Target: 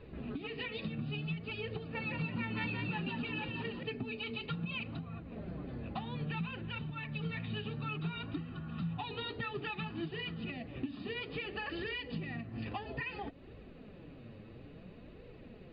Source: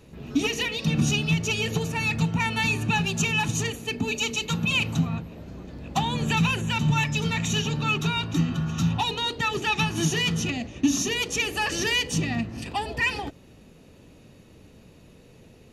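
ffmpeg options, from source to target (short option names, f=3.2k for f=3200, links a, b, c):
-filter_complex "[0:a]lowpass=2.6k,bandreject=f=920:w=9.9,acompressor=threshold=-37dB:ratio=6,flanger=delay=1.8:depth=8:regen=36:speed=0.59:shape=triangular,asettb=1/sr,asplit=3[a][b][c];[a]atrim=end=1.774[d];[b]atrim=start=1.77:end=3.83,asetpts=PTS-STARTPTS,afade=t=in:d=0.004:c=qsin,afade=t=out:st=2.056:d=0.004:c=qsin,asplit=5[e][f][g][h][i];[f]adelay=176,afreqshift=72,volume=-3.5dB[j];[g]adelay=352,afreqshift=144,volume=-13.7dB[k];[h]adelay=528,afreqshift=216,volume=-23.8dB[l];[i]adelay=704,afreqshift=288,volume=-34dB[m];[e][j][k][l][m]amix=inputs=5:normalize=0,atrim=end_sample=90846[n];[c]atrim=start=3.826[o];[d][n]acrossfade=d=0.004:c1=hsin:c2=qsin[p];[p][o]acrossfade=d=0.004:c1=qsin:c2=hsin,volume=3.5dB" -ar 16000 -c:a mp2 -b:a 64k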